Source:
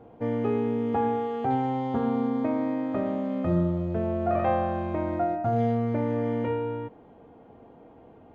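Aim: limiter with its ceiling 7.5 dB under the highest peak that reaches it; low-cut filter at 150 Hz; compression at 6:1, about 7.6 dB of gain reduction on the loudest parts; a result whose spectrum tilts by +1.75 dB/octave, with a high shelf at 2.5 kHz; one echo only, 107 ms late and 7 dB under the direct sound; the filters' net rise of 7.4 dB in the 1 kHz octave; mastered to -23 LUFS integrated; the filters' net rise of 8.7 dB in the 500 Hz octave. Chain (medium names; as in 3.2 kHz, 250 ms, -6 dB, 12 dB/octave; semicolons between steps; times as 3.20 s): high-pass 150 Hz; peaking EQ 500 Hz +9 dB; peaking EQ 1 kHz +7 dB; treble shelf 2.5 kHz -7.5 dB; compression 6:1, threshold -21 dBFS; peak limiter -20 dBFS; delay 107 ms -7 dB; trim +3 dB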